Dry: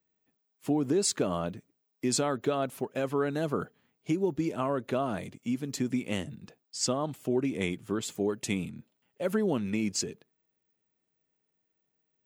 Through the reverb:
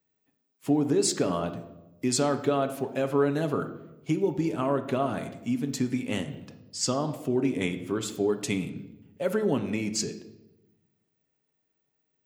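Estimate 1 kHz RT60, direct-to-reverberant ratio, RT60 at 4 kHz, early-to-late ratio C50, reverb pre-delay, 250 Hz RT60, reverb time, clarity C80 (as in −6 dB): 0.80 s, 6.5 dB, 0.70 s, 11.5 dB, 7 ms, 1.3 s, 1.0 s, 13.5 dB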